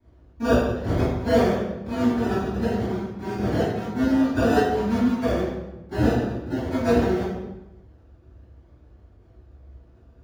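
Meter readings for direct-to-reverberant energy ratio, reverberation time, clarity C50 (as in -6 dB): -14.5 dB, 1.0 s, 1.0 dB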